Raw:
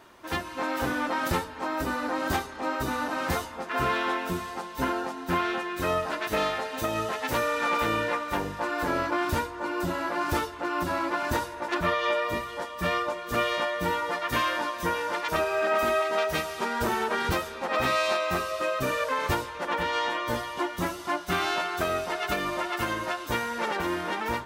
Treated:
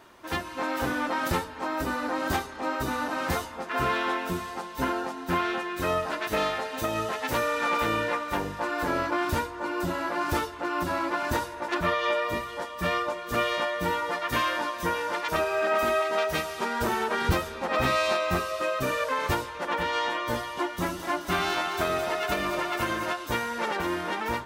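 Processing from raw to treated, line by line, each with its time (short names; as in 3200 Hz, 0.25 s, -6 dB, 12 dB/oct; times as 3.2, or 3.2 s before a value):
17.21–18.4 low shelf 200 Hz +7.5 dB
20.75–23.13 split-band echo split 350 Hz, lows 95 ms, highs 0.215 s, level -8 dB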